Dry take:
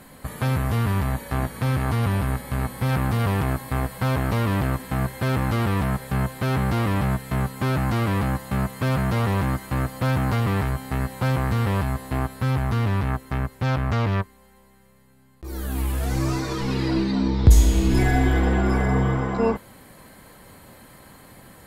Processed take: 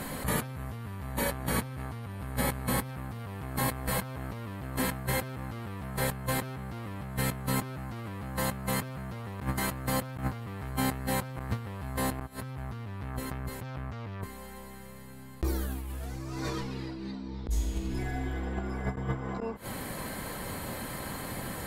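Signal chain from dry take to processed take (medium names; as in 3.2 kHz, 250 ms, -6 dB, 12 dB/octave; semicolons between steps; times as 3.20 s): inverted gate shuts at -12 dBFS, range -24 dB; compressor with a negative ratio -35 dBFS, ratio -1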